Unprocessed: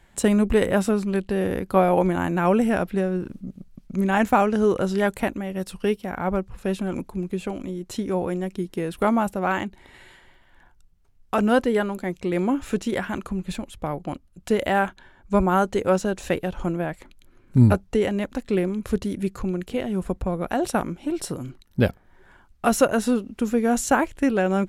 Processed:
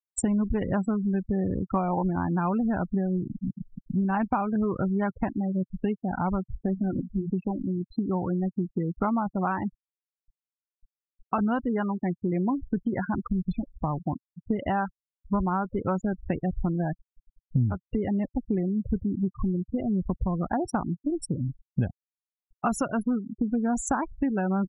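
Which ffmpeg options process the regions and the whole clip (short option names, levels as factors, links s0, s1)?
-filter_complex "[0:a]asettb=1/sr,asplit=3[s0][s1][s2];[s0]atrim=end=6.664[s3];[s1]atrim=start=6.66:end=7.3,asetpts=PTS-STARTPTS,afade=t=in:d=0.004:c=qsin,afade=t=out:st=0.636:d=0.004:c=qsin,lowpass=f=2100:w=0.5412,lowpass=f=2100:w=1.3066,bandreject=f=60:t=h:w=6,bandreject=f=120:t=h:w=6,bandreject=f=180:t=h:w=6,bandreject=f=240:t=h:w=6[s4];[s2]atrim=start=7.296[s5];[s3][s4]acrossfade=d=0.004:c1=hsin:c2=qsin[s6];[s6][s5]acrossfade=d=0.004:c1=qsin:c2=hsin,afftfilt=real='re*gte(hypot(re,im),0.0708)':imag='im*gte(hypot(re,im),0.0708)':win_size=1024:overlap=0.75,equalizer=f=125:t=o:w=1:g=4,equalizer=f=500:t=o:w=1:g=-11,equalizer=f=1000:t=o:w=1:g=5,equalizer=f=2000:t=o:w=1:g=-8,equalizer=f=4000:t=o:w=1:g=-9,acompressor=threshold=0.0398:ratio=5,volume=1.68"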